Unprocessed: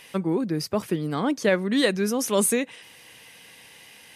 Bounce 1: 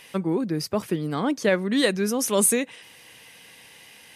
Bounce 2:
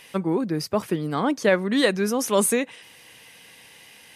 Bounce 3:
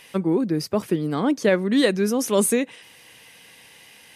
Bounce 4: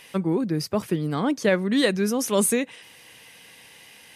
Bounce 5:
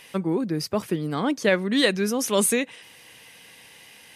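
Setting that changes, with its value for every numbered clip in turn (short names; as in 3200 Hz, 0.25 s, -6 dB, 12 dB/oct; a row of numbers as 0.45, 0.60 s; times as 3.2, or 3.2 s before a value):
dynamic EQ, frequency: 9700, 980, 320, 100, 3100 Hz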